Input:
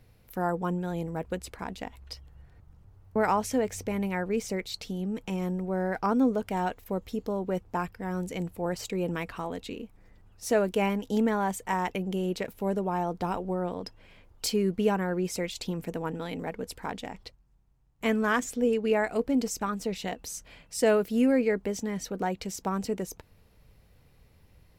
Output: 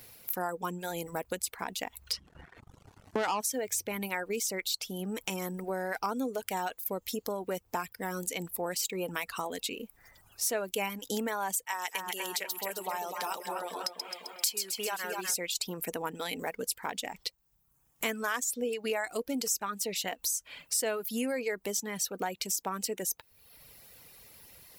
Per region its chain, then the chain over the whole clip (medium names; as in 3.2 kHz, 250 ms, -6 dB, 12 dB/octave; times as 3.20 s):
2.13–3.41 s: waveshaping leveller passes 2 + distance through air 69 m
11.65–15.34 s: high-pass 1.2 kHz 6 dB/octave + two-band feedback delay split 2.8 kHz, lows 248 ms, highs 131 ms, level -5 dB
whole clip: reverb removal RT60 0.77 s; RIAA curve recording; compression 3:1, threshold -42 dBFS; trim +8.5 dB